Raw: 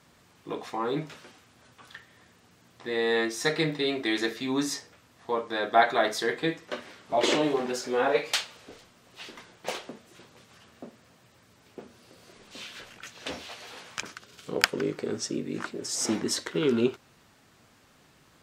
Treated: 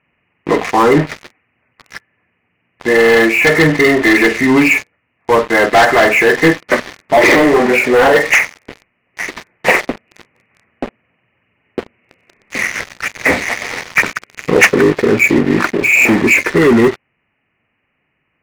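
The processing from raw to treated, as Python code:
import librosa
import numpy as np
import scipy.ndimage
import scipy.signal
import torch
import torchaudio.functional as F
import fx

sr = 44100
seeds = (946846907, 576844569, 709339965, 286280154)

p1 = fx.freq_compress(x, sr, knee_hz=1700.0, ratio=4.0)
p2 = fx.leveller(p1, sr, passes=5)
p3 = fx.rider(p2, sr, range_db=4, speed_s=0.5)
p4 = p2 + F.gain(torch.from_numpy(p3), 2.0).numpy()
y = F.gain(torch.from_numpy(p4), -4.5).numpy()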